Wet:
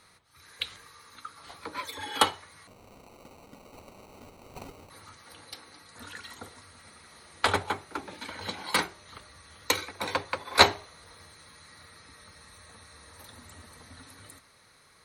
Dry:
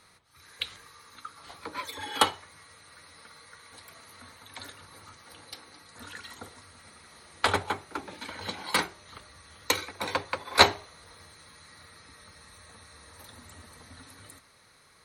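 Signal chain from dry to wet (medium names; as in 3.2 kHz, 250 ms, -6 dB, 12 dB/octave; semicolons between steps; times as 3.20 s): 2.67–4.90 s: sample-rate reducer 1.7 kHz, jitter 0%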